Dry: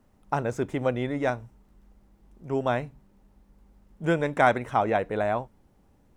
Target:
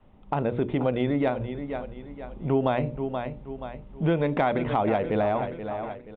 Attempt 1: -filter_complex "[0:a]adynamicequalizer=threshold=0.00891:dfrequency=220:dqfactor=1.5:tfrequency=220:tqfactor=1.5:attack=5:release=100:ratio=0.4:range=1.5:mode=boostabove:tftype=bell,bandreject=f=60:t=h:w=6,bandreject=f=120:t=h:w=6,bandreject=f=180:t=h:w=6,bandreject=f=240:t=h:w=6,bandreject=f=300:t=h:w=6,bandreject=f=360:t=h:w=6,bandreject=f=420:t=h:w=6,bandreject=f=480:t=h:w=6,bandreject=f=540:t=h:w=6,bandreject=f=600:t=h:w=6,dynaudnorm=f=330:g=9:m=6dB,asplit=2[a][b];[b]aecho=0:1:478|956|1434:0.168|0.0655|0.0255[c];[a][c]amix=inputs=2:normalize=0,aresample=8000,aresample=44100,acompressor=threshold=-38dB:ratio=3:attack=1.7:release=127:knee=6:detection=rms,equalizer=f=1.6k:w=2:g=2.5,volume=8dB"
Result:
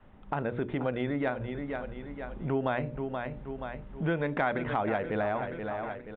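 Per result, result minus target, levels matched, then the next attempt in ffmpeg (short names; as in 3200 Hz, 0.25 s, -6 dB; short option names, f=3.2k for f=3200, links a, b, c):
2000 Hz band +6.5 dB; compressor: peak gain reduction +6.5 dB
-filter_complex "[0:a]adynamicequalizer=threshold=0.00891:dfrequency=220:dqfactor=1.5:tfrequency=220:tqfactor=1.5:attack=5:release=100:ratio=0.4:range=1.5:mode=boostabove:tftype=bell,bandreject=f=60:t=h:w=6,bandreject=f=120:t=h:w=6,bandreject=f=180:t=h:w=6,bandreject=f=240:t=h:w=6,bandreject=f=300:t=h:w=6,bandreject=f=360:t=h:w=6,bandreject=f=420:t=h:w=6,bandreject=f=480:t=h:w=6,bandreject=f=540:t=h:w=6,bandreject=f=600:t=h:w=6,dynaudnorm=f=330:g=9:m=6dB,asplit=2[a][b];[b]aecho=0:1:478|956|1434:0.168|0.0655|0.0255[c];[a][c]amix=inputs=2:normalize=0,aresample=8000,aresample=44100,acompressor=threshold=-38dB:ratio=3:attack=1.7:release=127:knee=6:detection=rms,equalizer=f=1.6k:w=2:g=-6.5,volume=8dB"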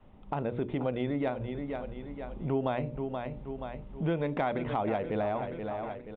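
compressor: peak gain reduction +6.5 dB
-filter_complex "[0:a]adynamicequalizer=threshold=0.00891:dfrequency=220:dqfactor=1.5:tfrequency=220:tqfactor=1.5:attack=5:release=100:ratio=0.4:range=1.5:mode=boostabove:tftype=bell,bandreject=f=60:t=h:w=6,bandreject=f=120:t=h:w=6,bandreject=f=180:t=h:w=6,bandreject=f=240:t=h:w=6,bandreject=f=300:t=h:w=6,bandreject=f=360:t=h:w=6,bandreject=f=420:t=h:w=6,bandreject=f=480:t=h:w=6,bandreject=f=540:t=h:w=6,bandreject=f=600:t=h:w=6,dynaudnorm=f=330:g=9:m=6dB,asplit=2[a][b];[b]aecho=0:1:478|956|1434:0.168|0.0655|0.0255[c];[a][c]amix=inputs=2:normalize=0,aresample=8000,aresample=44100,acompressor=threshold=-28.5dB:ratio=3:attack=1.7:release=127:knee=6:detection=rms,equalizer=f=1.6k:w=2:g=-6.5,volume=8dB"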